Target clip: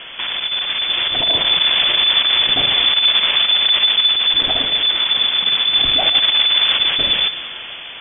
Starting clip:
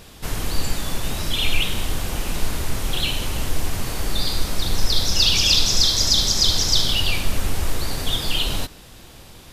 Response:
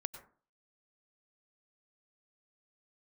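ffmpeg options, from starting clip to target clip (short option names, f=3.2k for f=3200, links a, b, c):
-filter_complex "[0:a]lowshelf=f=370:g=7.5,acontrast=87,alimiter=limit=-10.5dB:level=0:latency=1:release=214,dynaudnorm=f=530:g=5:m=10dB,asplit=2[a][b];[b]highpass=f=720:p=1,volume=18dB,asoftclip=type=tanh:threshold=-2.5dB[c];[a][c]amix=inputs=2:normalize=0,lowpass=f=2.4k:p=1,volume=-6dB,asetrate=52479,aresample=44100,asplit=2[d][e];[1:a]atrim=start_sample=2205,asetrate=29988,aresample=44100[f];[e][f]afir=irnorm=-1:irlink=0,volume=-1.5dB[g];[d][g]amix=inputs=2:normalize=0,lowpass=f=3k:t=q:w=0.5098,lowpass=f=3k:t=q:w=0.6013,lowpass=f=3k:t=q:w=0.9,lowpass=f=3k:t=q:w=2.563,afreqshift=-3500,volume=-8.5dB"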